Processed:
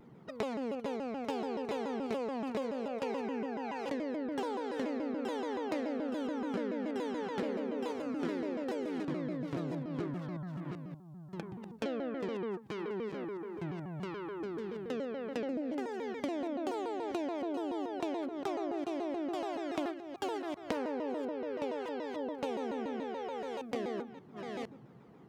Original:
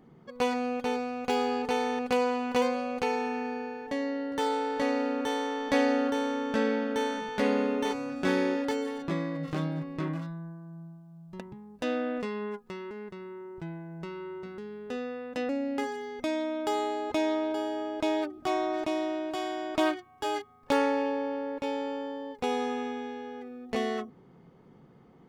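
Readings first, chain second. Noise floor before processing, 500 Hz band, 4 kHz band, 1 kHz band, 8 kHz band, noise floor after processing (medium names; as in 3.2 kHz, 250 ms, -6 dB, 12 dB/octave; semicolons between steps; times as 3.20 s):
-56 dBFS, -6.0 dB, -10.0 dB, -8.5 dB, under -10 dB, -53 dBFS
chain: chunks repeated in reverse 576 ms, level -10.5 dB; dynamic bell 360 Hz, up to +7 dB, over -39 dBFS, Q 0.84; compression 6:1, threshold -34 dBFS, peak gain reduction 17.5 dB; high-pass 85 Hz; vibrato with a chosen wave saw down 7 Hz, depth 250 cents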